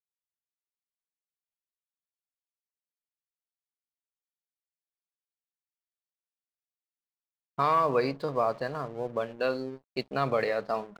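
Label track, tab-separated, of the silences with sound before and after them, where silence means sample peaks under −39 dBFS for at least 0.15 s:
9.760000	9.970000	silence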